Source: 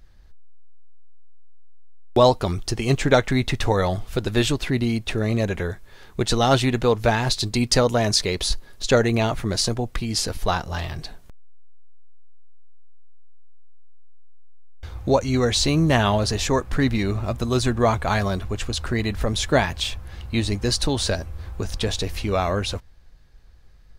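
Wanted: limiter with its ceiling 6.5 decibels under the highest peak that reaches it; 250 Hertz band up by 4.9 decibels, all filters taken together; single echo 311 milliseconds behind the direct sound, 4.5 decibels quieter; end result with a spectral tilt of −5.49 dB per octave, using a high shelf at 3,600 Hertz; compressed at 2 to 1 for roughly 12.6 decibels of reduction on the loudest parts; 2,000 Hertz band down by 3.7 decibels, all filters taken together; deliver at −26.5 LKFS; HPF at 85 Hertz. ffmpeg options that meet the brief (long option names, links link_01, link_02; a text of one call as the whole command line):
ffmpeg -i in.wav -af "highpass=85,equalizer=frequency=250:width_type=o:gain=6,equalizer=frequency=2000:width_type=o:gain=-3,highshelf=frequency=3600:gain=-7,acompressor=threshold=-34dB:ratio=2,alimiter=limit=-21dB:level=0:latency=1,aecho=1:1:311:0.596,volume=5dB" out.wav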